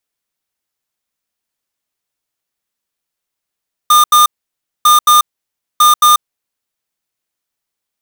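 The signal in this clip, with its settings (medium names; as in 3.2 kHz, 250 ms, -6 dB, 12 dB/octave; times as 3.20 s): beep pattern square 1.21 kHz, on 0.14 s, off 0.08 s, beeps 2, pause 0.59 s, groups 3, -7 dBFS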